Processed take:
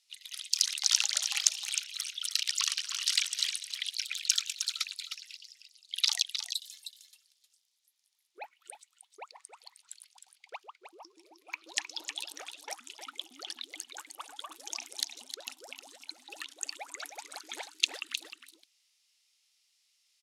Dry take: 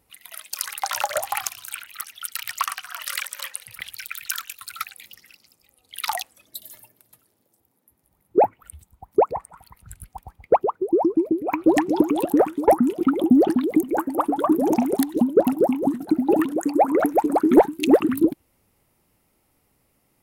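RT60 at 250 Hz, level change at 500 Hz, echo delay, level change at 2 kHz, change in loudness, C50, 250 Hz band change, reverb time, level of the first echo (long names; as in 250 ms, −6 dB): no reverb audible, −34.5 dB, 310 ms, −6.0 dB, −10.5 dB, no reverb audible, below −40 dB, no reverb audible, −8.5 dB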